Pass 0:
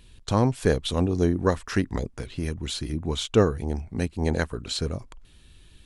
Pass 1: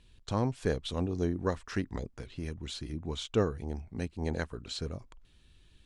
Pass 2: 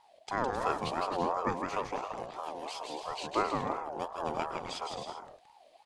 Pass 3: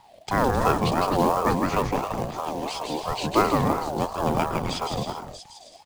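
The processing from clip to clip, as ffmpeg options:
-af "lowpass=8k,volume=-8.5dB"
-filter_complex "[0:a]asplit=2[a][b];[b]aecho=0:1:160|264|331.6|375.5|404.1:0.631|0.398|0.251|0.158|0.1[c];[a][c]amix=inputs=2:normalize=0,aeval=exprs='val(0)*sin(2*PI*750*n/s+750*0.2/2.9*sin(2*PI*2.9*n/s))':c=same"
-filter_complex "[0:a]acrossover=split=240|3900[a][b][c];[a]aeval=exprs='0.0316*sin(PI/2*3.16*val(0)/0.0316)':c=same[d];[b]acrusher=bits=4:mode=log:mix=0:aa=0.000001[e];[c]aecho=1:1:639:0.501[f];[d][e][f]amix=inputs=3:normalize=0,volume=8.5dB"

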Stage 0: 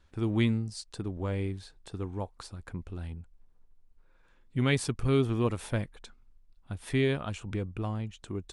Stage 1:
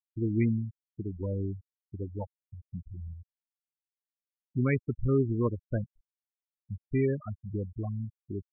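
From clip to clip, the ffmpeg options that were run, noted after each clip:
-filter_complex "[0:a]acrossover=split=2800[a][b];[b]acompressor=threshold=-47dB:ratio=4:attack=1:release=60[c];[a][c]amix=inputs=2:normalize=0,afftfilt=real='re*gte(hypot(re,im),0.0708)':imag='im*gte(hypot(re,im),0.0708)':win_size=1024:overlap=0.75"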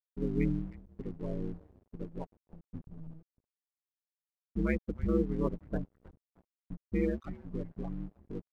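-filter_complex "[0:a]aeval=exprs='val(0)*sin(2*PI*77*n/s)':c=same,asplit=5[a][b][c][d][e];[b]adelay=312,afreqshift=-110,volume=-18dB[f];[c]adelay=624,afreqshift=-220,volume=-25.3dB[g];[d]adelay=936,afreqshift=-330,volume=-32.7dB[h];[e]adelay=1248,afreqshift=-440,volume=-40dB[i];[a][f][g][h][i]amix=inputs=5:normalize=0,aeval=exprs='sgn(val(0))*max(abs(val(0))-0.00211,0)':c=same"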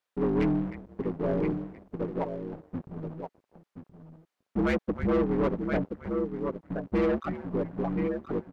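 -filter_complex "[0:a]aecho=1:1:1024:0.282,asplit=2[a][b];[b]highpass=f=720:p=1,volume=27dB,asoftclip=type=tanh:threshold=-16.5dB[c];[a][c]amix=inputs=2:normalize=0,lowpass=f=1.3k:p=1,volume=-6dB"

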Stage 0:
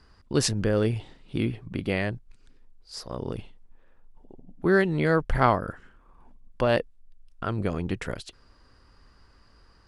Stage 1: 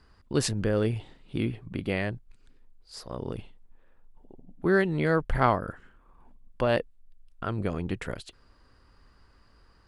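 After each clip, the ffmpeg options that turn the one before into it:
-af "equalizer=f=5.6k:w=2.7:g=-4.5,volume=-2dB"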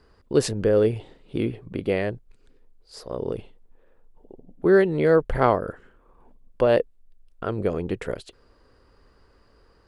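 -af "equalizer=f=460:w=1.4:g=10"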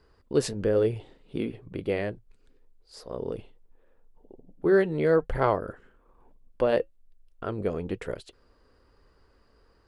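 -af "flanger=delay=2:depth=2.6:regen=-76:speed=1.1:shape=sinusoidal"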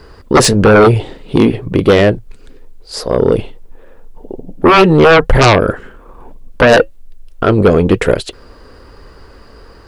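-af "aeval=exprs='0.355*sin(PI/2*4.47*val(0)/0.355)':c=same,volume=6.5dB"

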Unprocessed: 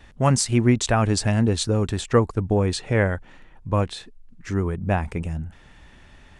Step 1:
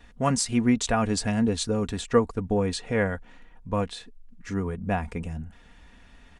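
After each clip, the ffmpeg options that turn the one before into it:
-af "aecho=1:1:4.2:0.5,volume=-4.5dB"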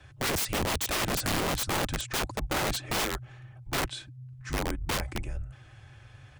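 -af "afreqshift=-140,aeval=exprs='(mod(15*val(0)+1,2)-1)/15':c=same"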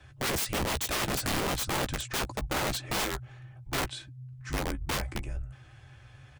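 -filter_complex "[0:a]asplit=2[a][b];[b]adelay=15,volume=-10.5dB[c];[a][c]amix=inputs=2:normalize=0,volume=-1.5dB"

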